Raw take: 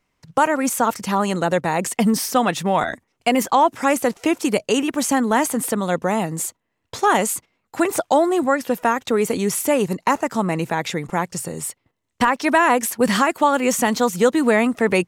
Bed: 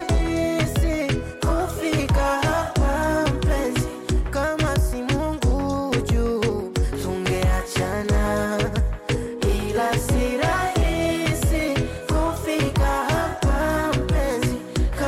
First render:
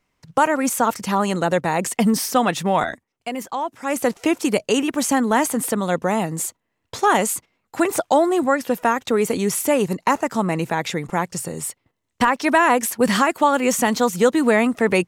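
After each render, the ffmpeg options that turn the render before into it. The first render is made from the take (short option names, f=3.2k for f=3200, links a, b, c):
-filter_complex "[0:a]asplit=3[a][b][c];[a]atrim=end=3.03,asetpts=PTS-STARTPTS,afade=t=out:st=2.85:d=0.18:silence=0.316228[d];[b]atrim=start=3.03:end=3.84,asetpts=PTS-STARTPTS,volume=-10dB[e];[c]atrim=start=3.84,asetpts=PTS-STARTPTS,afade=t=in:d=0.18:silence=0.316228[f];[d][e][f]concat=n=3:v=0:a=1"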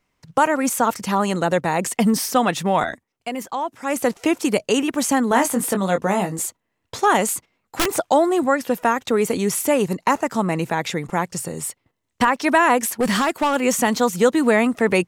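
-filter_complex "[0:a]asettb=1/sr,asplit=3[a][b][c];[a]atrim=end=5.294[d];[b]atrim=start=5.29:end=6.39,asetpts=PTS-STARTPTS,afade=t=in:d=0.004:c=qsin,afade=t=out:st=1.096:d=0.004:c=qsin,asplit=2[e][f];[f]adelay=21,volume=-6.5dB[g];[e][g]amix=inputs=2:normalize=0,atrim=end_sample=48510[h];[c]atrim=start=6.386[i];[d][h]acrossfade=d=0.004:c1=hsin:c2=qsin[j];[j][i]acrossfade=d=0.004:c1=qsin:c2=hsin,asettb=1/sr,asplit=3[k][l][m];[k]atrim=end=7.244[n];[l]atrim=start=7.24:end=7.88,asetpts=PTS-STARTPTS,afade=t=in:d=0.004:c=qsin,afade=t=out:st=0.636:d=0.004:c=qsin,aeval=exprs='(mod(4.22*val(0)+1,2)-1)/4.22':c=same[o];[m]atrim=start=7.876[p];[n][o]acrossfade=d=0.004:c1=hsin:c2=qsin[q];[q][p]acrossfade=d=0.004:c1=qsin:c2=hsin,asettb=1/sr,asplit=3[r][s][t];[r]atrim=end=13.004[u];[s]atrim=start=13:end=13.56,asetpts=PTS-STARTPTS,afade=t=in:d=0.004:c=qsin,afade=t=out:st=0.556:d=0.004:c=qsin,asoftclip=type=hard:threshold=-14.5dB[v];[t]atrim=start=13.556[w];[u][v]acrossfade=d=0.004:c1=hsin:c2=qsin[x];[x][w]acrossfade=d=0.004:c1=qsin:c2=hsin"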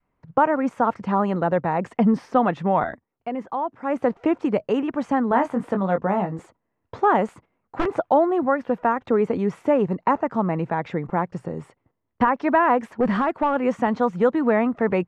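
-af "lowpass=1.3k,adynamicequalizer=threshold=0.0355:dfrequency=340:dqfactor=0.93:tfrequency=340:tqfactor=0.93:attack=5:release=100:ratio=0.375:range=2:mode=cutabove:tftype=bell"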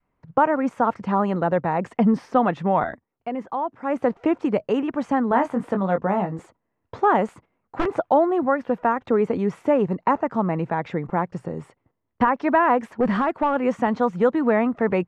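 -af anull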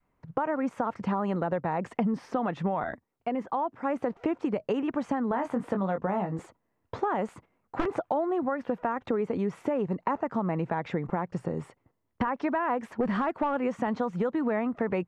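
-af "alimiter=limit=-12.5dB:level=0:latency=1,acompressor=threshold=-25dB:ratio=6"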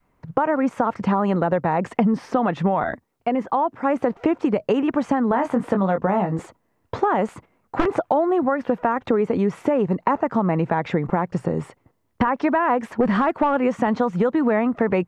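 -af "volume=8.5dB"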